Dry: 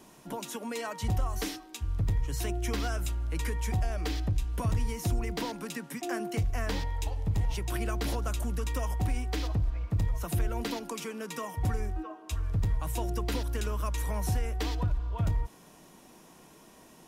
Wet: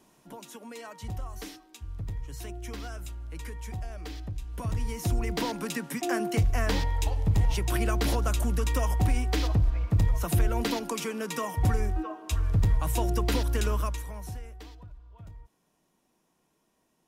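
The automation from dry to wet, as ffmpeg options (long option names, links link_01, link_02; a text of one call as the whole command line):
ffmpeg -i in.wav -af "volume=5dB,afade=type=in:start_time=4.41:duration=1.2:silence=0.251189,afade=type=out:start_time=13.75:duration=0.28:silence=0.266073,afade=type=out:start_time=14.03:duration=0.77:silence=0.266073" out.wav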